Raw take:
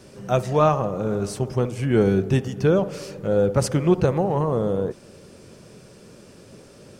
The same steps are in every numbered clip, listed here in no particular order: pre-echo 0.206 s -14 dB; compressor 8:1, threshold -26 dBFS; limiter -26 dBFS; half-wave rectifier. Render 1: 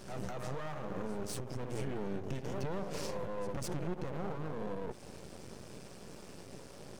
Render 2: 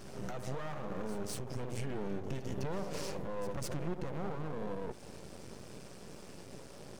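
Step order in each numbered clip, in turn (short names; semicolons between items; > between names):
pre-echo > compressor > limiter > half-wave rectifier; compressor > limiter > half-wave rectifier > pre-echo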